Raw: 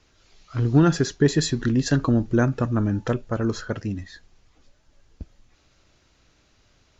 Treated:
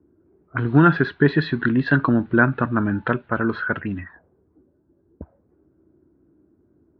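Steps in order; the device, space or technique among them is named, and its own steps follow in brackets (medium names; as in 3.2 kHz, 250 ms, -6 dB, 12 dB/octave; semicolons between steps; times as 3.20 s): envelope filter bass rig (touch-sensitive low-pass 320–4000 Hz up, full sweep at -24 dBFS; cabinet simulation 74–2400 Hz, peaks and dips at 110 Hz -7 dB, 500 Hz -4 dB, 1 kHz +5 dB, 1.5 kHz +10 dB); trim +2.5 dB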